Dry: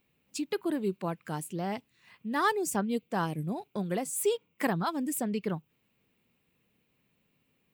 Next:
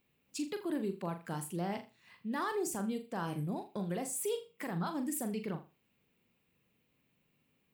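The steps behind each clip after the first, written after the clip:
brickwall limiter −25.5 dBFS, peak gain reduction 11.5 dB
flutter between parallel walls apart 7 metres, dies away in 0.3 s
level −3 dB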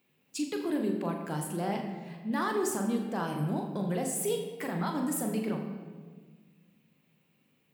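high-pass filter 130 Hz
on a send at −3.5 dB: convolution reverb RT60 1.5 s, pre-delay 13 ms
on the sum: level +3.5 dB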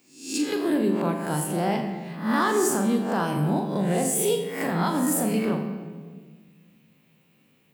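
peak hold with a rise ahead of every peak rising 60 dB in 0.51 s
level +6 dB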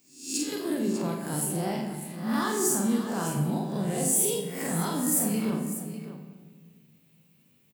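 bass and treble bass +7 dB, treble +10 dB
multi-tap delay 49/599 ms −4.5/−11.5 dB
level −8.5 dB

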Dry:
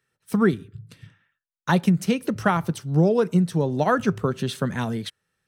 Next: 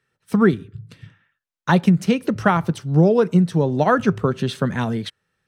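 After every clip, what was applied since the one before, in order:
high-shelf EQ 7,700 Hz −11.5 dB
level +4 dB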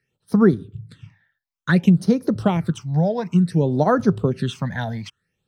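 all-pass phaser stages 8, 0.57 Hz, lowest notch 340–2,800 Hz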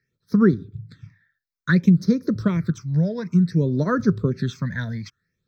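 phaser with its sweep stopped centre 2,900 Hz, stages 6

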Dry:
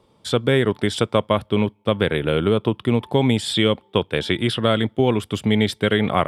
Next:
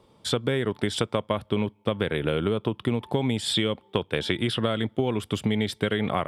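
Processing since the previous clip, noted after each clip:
downward compressor, threshold −21 dBFS, peak gain reduction 9.5 dB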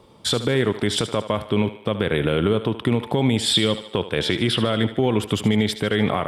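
brickwall limiter −16 dBFS, peak gain reduction 8.5 dB
feedback echo with a high-pass in the loop 75 ms, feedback 53%, high-pass 300 Hz, level −12 dB
level +7 dB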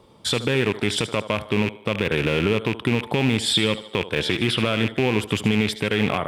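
loose part that buzzes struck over −27 dBFS, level −14 dBFS
level −1.5 dB

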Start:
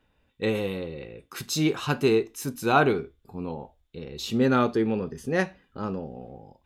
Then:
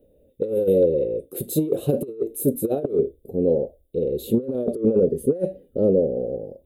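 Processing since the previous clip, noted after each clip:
drawn EQ curve 120 Hz 0 dB, 250 Hz +4 dB, 560 Hz +15 dB, 950 Hz −26 dB, 1,400 Hz −27 dB, 2,300 Hz −22 dB, 3,700 Hz −13 dB, 5,600 Hz −25 dB, 9,500 Hz +4 dB, 14,000 Hz +7 dB
compressor whose output falls as the input rises −20 dBFS, ratio −0.5
level +1 dB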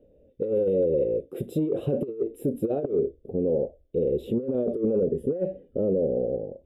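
brickwall limiter −16.5 dBFS, peak gain reduction 9 dB
Savitzky-Golay smoothing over 25 samples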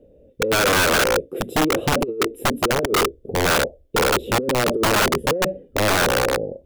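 harmonic generator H 2 −37 dB, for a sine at −16 dBFS
wrap-around overflow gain 20 dB
level +7 dB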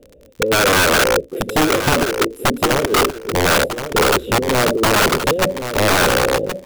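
surface crackle 48 per second −33 dBFS
repeating echo 1,073 ms, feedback 19%, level −9 dB
level +3.5 dB

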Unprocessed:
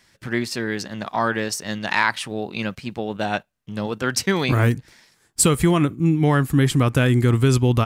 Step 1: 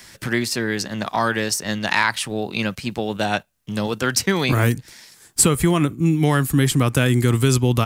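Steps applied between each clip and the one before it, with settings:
high-shelf EQ 5,200 Hz +9.5 dB
multiband upward and downward compressor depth 40%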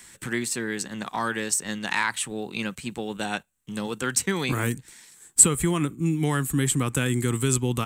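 thirty-one-band graphic EQ 100 Hz −10 dB, 630 Hz −8 dB, 5,000 Hz −8 dB, 8,000 Hz +11 dB
level −6 dB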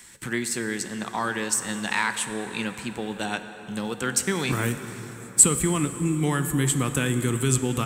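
dense smooth reverb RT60 4.7 s, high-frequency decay 0.6×, DRR 8.5 dB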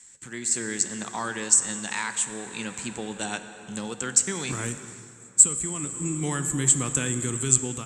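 automatic gain control gain up to 12 dB
low-pass with resonance 7,400 Hz, resonance Q 6.1
level −12.5 dB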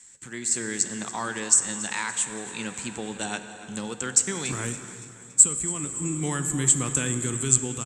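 repeating echo 283 ms, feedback 53%, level −17 dB

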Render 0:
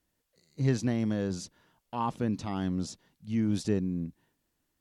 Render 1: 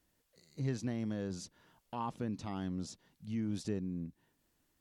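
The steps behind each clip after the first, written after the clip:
downward compressor 1.5 to 1, threshold −54 dBFS, peak gain reduction 11.5 dB
level +2 dB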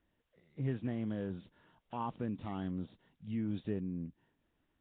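Nellymoser 16 kbit/s 8,000 Hz

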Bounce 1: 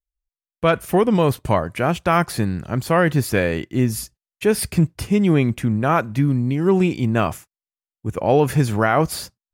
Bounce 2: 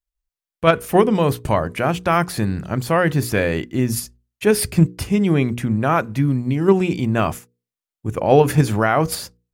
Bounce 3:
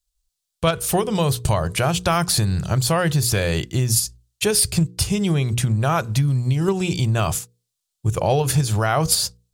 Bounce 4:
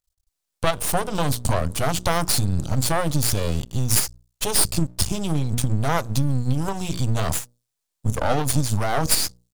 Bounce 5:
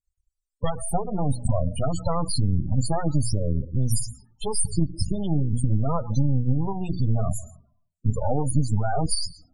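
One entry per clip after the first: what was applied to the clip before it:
in parallel at +0.5 dB: output level in coarse steps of 14 dB; on the sum: mains-hum notches 60/120/180/240/300/360/420/480 Hz; level −2 dB
octave-band graphic EQ 125/250/500/1,000/2,000/4,000/8,000 Hz +3/−6/−4/−3/−8/+6/+7 dB; downward compressor 6 to 1, threshold −22 dBFS, peak gain reduction 12.5 dB; parametric band 260 Hz −8.5 dB 0.6 octaves; level +7.5 dB
phaser with its sweep stopped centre 780 Hz, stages 4; half-wave rectification; level +4.5 dB
convolution reverb RT60 0.60 s, pre-delay 108 ms, DRR 16 dB; spectral peaks only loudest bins 16; phaser whose notches keep moving one way falling 0.51 Hz

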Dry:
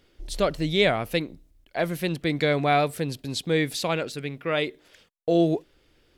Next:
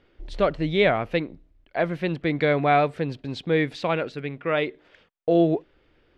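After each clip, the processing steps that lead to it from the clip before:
low-pass filter 2,400 Hz 12 dB per octave
low-shelf EQ 350 Hz −3 dB
level +3 dB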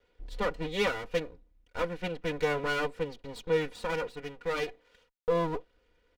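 lower of the sound and its delayed copy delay 2.1 ms
comb filter 4.1 ms, depth 71%
level −8 dB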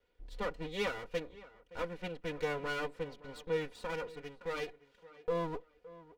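tape delay 568 ms, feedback 29%, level −17.5 dB, low-pass 2,500 Hz
level −6.5 dB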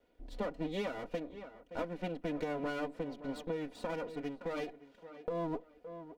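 downward compressor 6 to 1, threshold −39 dBFS, peak gain reduction 10.5 dB
hollow resonant body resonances 270/630 Hz, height 14 dB, ringing for 25 ms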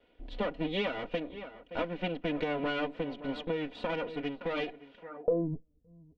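low-pass filter sweep 3,100 Hz → 110 Hz, 0:04.97–0:05.61
level +4 dB

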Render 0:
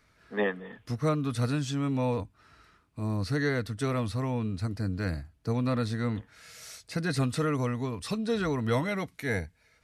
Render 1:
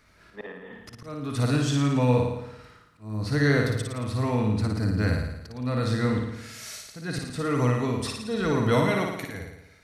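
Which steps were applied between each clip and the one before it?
volume swells 467 ms
on a send: flutter between parallel walls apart 9.6 metres, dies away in 0.88 s
on the sum: level +4.5 dB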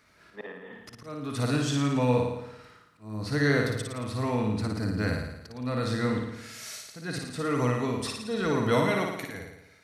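high-pass filter 150 Hz 6 dB per octave
level −1 dB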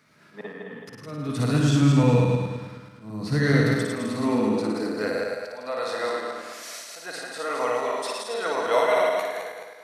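feedback delay that plays each chunk backwards 107 ms, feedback 61%, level −2.5 dB
high-pass filter sweep 150 Hz → 630 Hz, 0:03.70–0:05.68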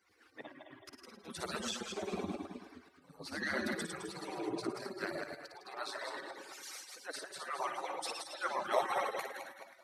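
harmonic-percussive split with one part muted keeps percussive
level −4.5 dB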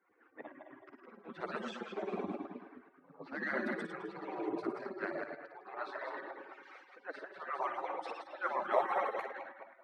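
low-pass that shuts in the quiet parts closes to 1,700 Hz, open at −32.5 dBFS
three-way crossover with the lows and the highs turned down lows −21 dB, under 170 Hz, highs −22 dB, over 2,500 Hz
level +1.5 dB

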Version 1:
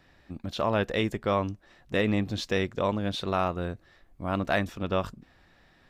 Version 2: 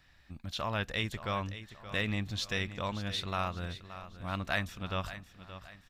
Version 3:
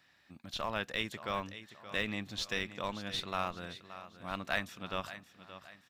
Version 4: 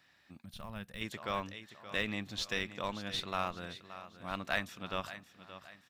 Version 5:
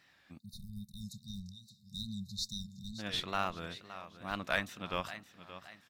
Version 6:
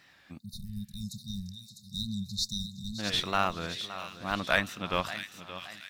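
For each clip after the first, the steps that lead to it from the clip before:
parametric band 390 Hz −14 dB 2.5 octaves; repeating echo 574 ms, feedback 40%, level −13 dB
high-pass filter 190 Hz 12 dB per octave; in parallel at −9 dB: comparator with hysteresis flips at −28 dBFS; on the sum: level −1.5 dB
gain on a spectral selection 0:00.45–0:01.02, 230–8,200 Hz −12 dB
tape wow and flutter 96 cents; time-frequency box erased 0:00.39–0:02.99, 230–3,600 Hz; level +1 dB
delay with a high-pass on its return 652 ms, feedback 44%, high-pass 2,800 Hz, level −7 dB; level +6.5 dB

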